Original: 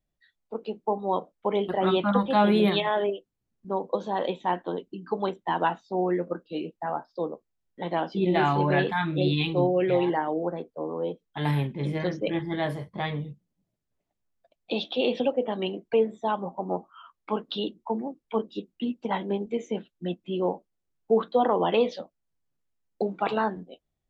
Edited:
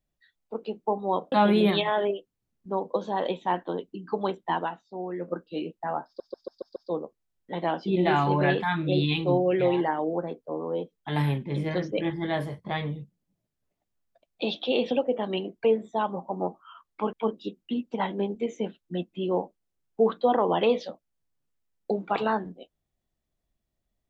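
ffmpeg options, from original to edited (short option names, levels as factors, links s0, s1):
-filter_complex "[0:a]asplit=10[s0][s1][s2][s3][s4][s5][s6][s7][s8][s9];[s0]atrim=end=1.322[s10];[s1]atrim=start=2.308:end=5.68,asetpts=PTS-STARTPTS,afade=t=out:st=3.222:d=0.15:silence=0.375837[s11];[s2]atrim=start=5.68:end=6.15,asetpts=PTS-STARTPTS,volume=0.376[s12];[s3]atrim=start=6.15:end=7.192,asetpts=PTS-STARTPTS,afade=t=in:d=0.15:silence=0.375837[s13];[s4]atrim=start=7.048:end=7.192[s14];[s5]atrim=start=7.048:end=7.192[s15];[s6]atrim=start=7.048:end=7.192[s16];[s7]atrim=start=7.048:end=7.192[s17];[s8]atrim=start=7.048:end=17.422[s18];[s9]atrim=start=18.238[s19];[s11][s12][s13]concat=n=3:v=0:a=1[s20];[s10][s20]acrossfade=d=0.004:c1=hsin:c2=hsin[s21];[s21][s14]acrossfade=d=0.004:c1=hsin:c2=hsin[s22];[s22][s15]acrossfade=d=0.004:c1=hsin:c2=hsin[s23];[s23][s16]acrossfade=d=0.004:c1=hsin:c2=hsin[s24];[s24][s17]acrossfade=d=0.004:c1=hsin:c2=hsin[s25];[s25][s18]acrossfade=d=0.004:c1=hsin:c2=hsin[s26];[s26][s19]acrossfade=d=0.004:c1=hsin:c2=hsin"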